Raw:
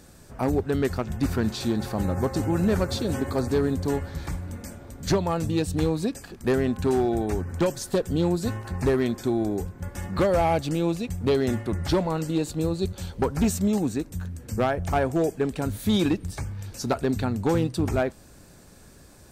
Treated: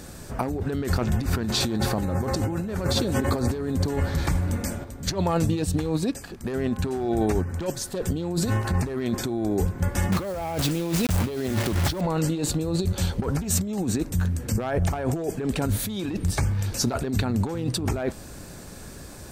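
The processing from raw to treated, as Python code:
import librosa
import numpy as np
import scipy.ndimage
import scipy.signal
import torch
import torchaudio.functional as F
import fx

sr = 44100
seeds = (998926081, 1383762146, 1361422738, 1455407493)

y = fx.upward_expand(x, sr, threshold_db=-32.0, expansion=1.5, at=(4.84, 8.02))
y = fx.quant_dither(y, sr, seeds[0], bits=6, dither='none', at=(10.12, 12.01))
y = fx.over_compress(y, sr, threshold_db=-30.0, ratio=-1.0)
y = F.gain(torch.from_numpy(y), 5.0).numpy()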